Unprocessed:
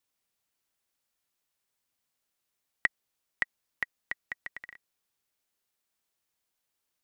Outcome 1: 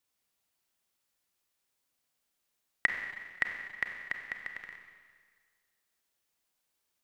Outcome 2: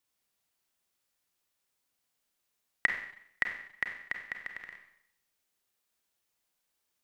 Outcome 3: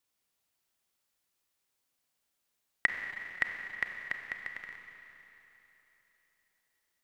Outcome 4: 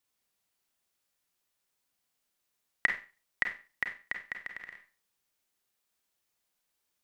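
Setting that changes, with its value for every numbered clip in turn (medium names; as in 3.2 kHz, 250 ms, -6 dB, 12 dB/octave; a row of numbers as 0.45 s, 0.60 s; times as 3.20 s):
Schroeder reverb, RT60: 1.7 s, 0.7 s, 3.5 s, 0.33 s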